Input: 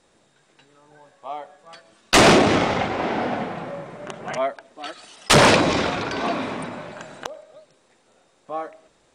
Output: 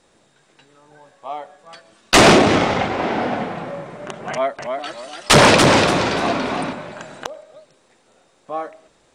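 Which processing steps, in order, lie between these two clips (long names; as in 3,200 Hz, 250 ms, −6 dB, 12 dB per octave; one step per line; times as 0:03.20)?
0:04.30–0:06.73: feedback echo with a swinging delay time 289 ms, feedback 31%, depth 107 cents, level −5 dB
level +3 dB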